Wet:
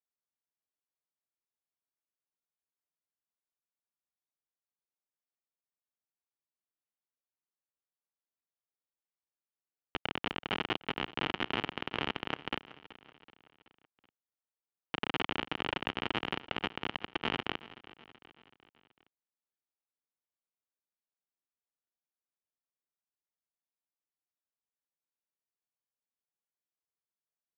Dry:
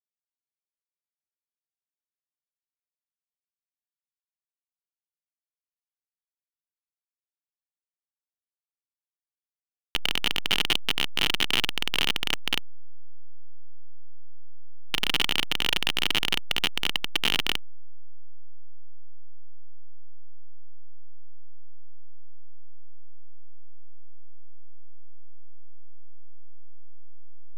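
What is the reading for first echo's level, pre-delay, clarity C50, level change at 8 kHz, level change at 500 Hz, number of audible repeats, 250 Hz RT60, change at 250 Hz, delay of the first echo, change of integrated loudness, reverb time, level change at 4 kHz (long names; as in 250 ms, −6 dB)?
−18.0 dB, no reverb audible, no reverb audible, below −25 dB, −0.5 dB, 4, no reverb audible, −1.0 dB, 378 ms, −10.5 dB, no reverb audible, −14.0 dB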